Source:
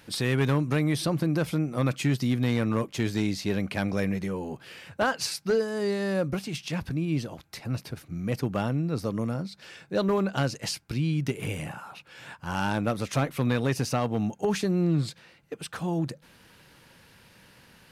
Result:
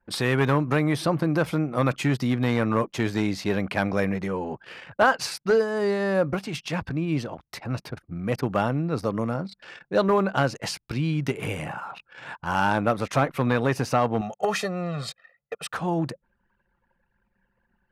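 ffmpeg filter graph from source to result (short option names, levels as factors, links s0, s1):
-filter_complex "[0:a]asettb=1/sr,asplit=3[s0][s1][s2];[s0]atrim=end=14.214[s3];[s1]atrim=start=14.21:end=15.72,asetpts=PTS-STARTPTS,afade=t=in:d=0.004:c=qsin,afade=t=out:st=1.506:d=0.004:c=qsin,highpass=f=450:p=1,aecho=1:1:1.6:0.92,atrim=end_sample=66591[s4];[s2]atrim=start=15.716[s5];[s3][s4]acrossfade=d=0.004:c1=hsin:c2=qsin[s6];[s6][s5]acrossfade=d=0.004:c1=qsin:c2=hsin,equalizer=f=1000:t=o:w=2.5:g=8,anlmdn=0.251,adynamicequalizer=threshold=0.0158:dfrequency=2400:dqfactor=0.7:tfrequency=2400:tqfactor=0.7:attack=5:release=100:ratio=0.375:range=2:mode=cutabove:tftype=highshelf"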